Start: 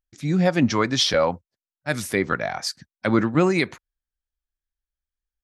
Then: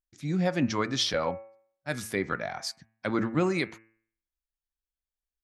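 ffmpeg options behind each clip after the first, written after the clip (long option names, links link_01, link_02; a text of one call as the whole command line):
ffmpeg -i in.wav -af "bandreject=frequency=111.4:width_type=h:width=4,bandreject=frequency=222.8:width_type=h:width=4,bandreject=frequency=334.2:width_type=h:width=4,bandreject=frequency=445.6:width_type=h:width=4,bandreject=frequency=557:width_type=h:width=4,bandreject=frequency=668.4:width_type=h:width=4,bandreject=frequency=779.8:width_type=h:width=4,bandreject=frequency=891.2:width_type=h:width=4,bandreject=frequency=1002.6:width_type=h:width=4,bandreject=frequency=1114:width_type=h:width=4,bandreject=frequency=1225.4:width_type=h:width=4,bandreject=frequency=1336.8:width_type=h:width=4,bandreject=frequency=1448.2:width_type=h:width=4,bandreject=frequency=1559.6:width_type=h:width=4,bandreject=frequency=1671:width_type=h:width=4,bandreject=frequency=1782.4:width_type=h:width=4,bandreject=frequency=1893.8:width_type=h:width=4,bandreject=frequency=2005.2:width_type=h:width=4,bandreject=frequency=2116.6:width_type=h:width=4,bandreject=frequency=2228:width_type=h:width=4,bandreject=frequency=2339.4:width_type=h:width=4,bandreject=frequency=2450.8:width_type=h:width=4,bandreject=frequency=2562.2:width_type=h:width=4,bandreject=frequency=2673.6:width_type=h:width=4,bandreject=frequency=2785:width_type=h:width=4,bandreject=frequency=2896.4:width_type=h:width=4,volume=-7dB" out.wav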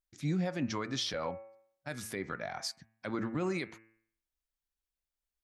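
ffmpeg -i in.wav -af "alimiter=level_in=0.5dB:limit=-24dB:level=0:latency=1:release=308,volume=-0.5dB" out.wav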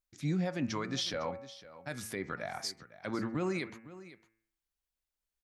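ffmpeg -i in.wav -af "aecho=1:1:506:0.15" out.wav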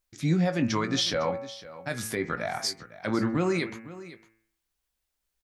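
ffmpeg -i in.wav -filter_complex "[0:a]asplit=2[link_01][link_02];[link_02]adelay=18,volume=-8.5dB[link_03];[link_01][link_03]amix=inputs=2:normalize=0,volume=7.5dB" out.wav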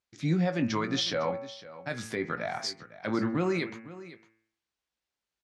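ffmpeg -i in.wav -af "highpass=100,lowpass=5700,volume=-2dB" out.wav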